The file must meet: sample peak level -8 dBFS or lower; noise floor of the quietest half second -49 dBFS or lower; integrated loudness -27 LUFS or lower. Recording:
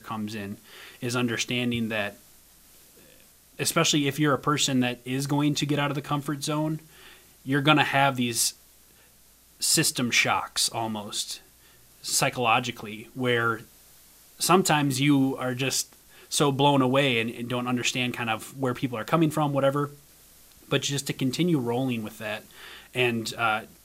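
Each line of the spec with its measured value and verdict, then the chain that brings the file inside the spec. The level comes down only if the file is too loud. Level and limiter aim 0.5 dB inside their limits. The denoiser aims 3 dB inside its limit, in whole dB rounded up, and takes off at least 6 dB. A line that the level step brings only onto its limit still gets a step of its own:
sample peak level -5.0 dBFS: fail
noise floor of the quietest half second -57 dBFS: OK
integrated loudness -25.0 LUFS: fail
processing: gain -2.5 dB; limiter -8.5 dBFS

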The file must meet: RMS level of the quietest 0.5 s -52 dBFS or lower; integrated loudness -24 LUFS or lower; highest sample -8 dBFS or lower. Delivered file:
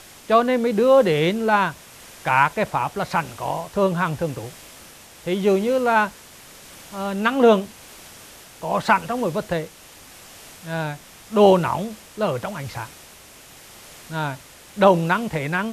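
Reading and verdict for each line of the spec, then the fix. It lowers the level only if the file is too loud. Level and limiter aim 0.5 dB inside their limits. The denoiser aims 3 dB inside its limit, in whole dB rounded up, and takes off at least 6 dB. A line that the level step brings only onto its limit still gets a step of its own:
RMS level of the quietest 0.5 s -46 dBFS: fail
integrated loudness -21.0 LUFS: fail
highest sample -2.5 dBFS: fail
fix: denoiser 6 dB, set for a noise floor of -46 dBFS; gain -3.5 dB; limiter -8.5 dBFS

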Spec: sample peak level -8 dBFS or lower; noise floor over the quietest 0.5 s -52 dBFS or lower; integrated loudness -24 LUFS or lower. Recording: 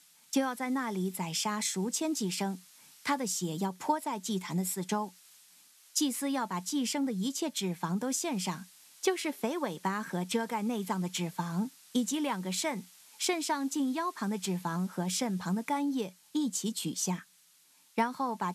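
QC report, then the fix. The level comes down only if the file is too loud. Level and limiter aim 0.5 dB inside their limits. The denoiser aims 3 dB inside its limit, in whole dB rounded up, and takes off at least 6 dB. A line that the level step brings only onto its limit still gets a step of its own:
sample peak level -14.5 dBFS: OK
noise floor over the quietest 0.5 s -64 dBFS: OK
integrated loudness -33.0 LUFS: OK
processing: none

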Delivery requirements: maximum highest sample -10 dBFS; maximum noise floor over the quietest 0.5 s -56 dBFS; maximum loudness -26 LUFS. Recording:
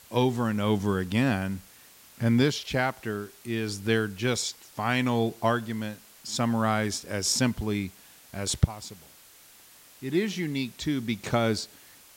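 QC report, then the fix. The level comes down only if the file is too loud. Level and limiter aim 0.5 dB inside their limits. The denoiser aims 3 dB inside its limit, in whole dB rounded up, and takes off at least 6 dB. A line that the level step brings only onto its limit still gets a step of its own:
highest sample -6.5 dBFS: fail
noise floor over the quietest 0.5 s -54 dBFS: fail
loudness -28.0 LUFS: OK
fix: denoiser 6 dB, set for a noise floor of -54 dBFS; limiter -10.5 dBFS

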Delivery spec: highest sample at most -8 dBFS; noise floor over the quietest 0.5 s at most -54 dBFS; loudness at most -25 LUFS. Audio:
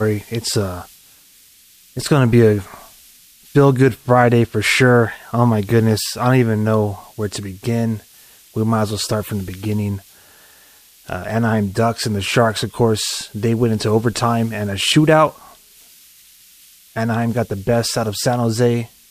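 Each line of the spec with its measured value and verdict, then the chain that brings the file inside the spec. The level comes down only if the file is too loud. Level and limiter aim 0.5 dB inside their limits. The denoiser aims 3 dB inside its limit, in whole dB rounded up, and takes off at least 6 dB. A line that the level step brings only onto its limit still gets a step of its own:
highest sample -1.5 dBFS: fail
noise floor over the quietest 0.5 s -49 dBFS: fail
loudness -17.5 LUFS: fail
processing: gain -8 dB

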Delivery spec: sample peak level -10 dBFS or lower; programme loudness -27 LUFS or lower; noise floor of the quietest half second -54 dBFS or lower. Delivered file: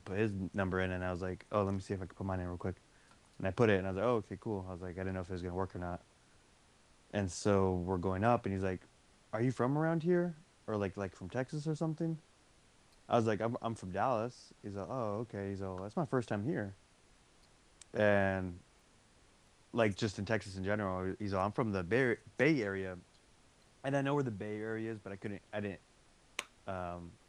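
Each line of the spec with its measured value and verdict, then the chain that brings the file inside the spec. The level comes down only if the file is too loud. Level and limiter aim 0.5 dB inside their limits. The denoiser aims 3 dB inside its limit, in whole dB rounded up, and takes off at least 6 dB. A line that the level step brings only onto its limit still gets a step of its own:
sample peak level -14.5 dBFS: OK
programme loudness -36.5 LUFS: OK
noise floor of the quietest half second -66 dBFS: OK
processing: none

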